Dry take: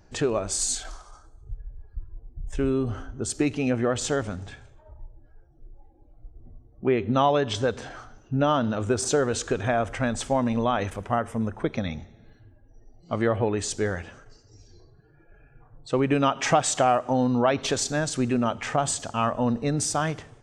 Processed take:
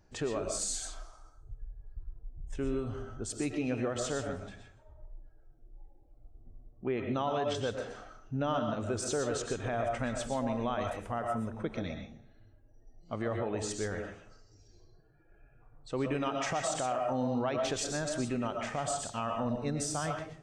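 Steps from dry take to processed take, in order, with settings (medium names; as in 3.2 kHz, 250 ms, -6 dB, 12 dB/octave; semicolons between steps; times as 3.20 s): reverberation RT60 0.35 s, pre-delay 80 ms, DRR 3.5 dB; peak limiter -14 dBFS, peak gain reduction 8 dB; trim -9 dB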